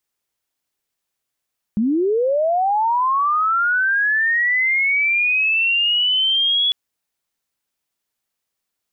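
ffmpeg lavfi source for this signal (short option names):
-f lavfi -i "aevalsrc='pow(10,(-15+0.5*t/4.95)/20)*sin(2*PI*(200*t+3200*t*t/(2*4.95)))':d=4.95:s=44100"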